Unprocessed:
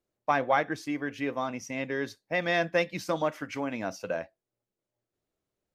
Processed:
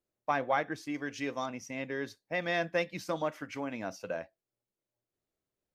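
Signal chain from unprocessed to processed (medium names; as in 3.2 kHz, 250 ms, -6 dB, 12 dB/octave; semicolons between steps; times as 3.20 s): 0.94–1.46 s: peaking EQ 6 kHz +12.5 dB 1.3 oct; trim -4.5 dB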